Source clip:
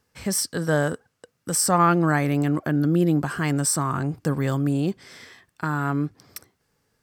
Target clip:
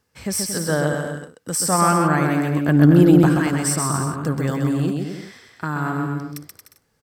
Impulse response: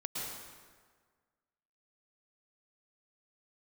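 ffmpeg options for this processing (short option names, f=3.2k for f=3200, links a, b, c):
-filter_complex "[0:a]asettb=1/sr,asplit=3[a][b][c];[a]atrim=end=2.684[d];[b]atrim=start=2.68:end=3.29,asetpts=PTS-STARTPTS,afade=t=in:d=0.004:c=qsin,afade=t=out:st=0.606:d=0.004:c=qsin,acontrast=89[e];[c]atrim=start=3.286[f];[d][e]acrossfade=d=0.004:c1=hsin:c2=qsin[g];[g][f]acrossfade=d=0.004:c1=qsin:c2=hsin,asplit=2[h][i];[i]aecho=0:1:130|227.5|300.6|355.5|396.6:0.631|0.398|0.251|0.158|0.1[j];[h][j]amix=inputs=2:normalize=0"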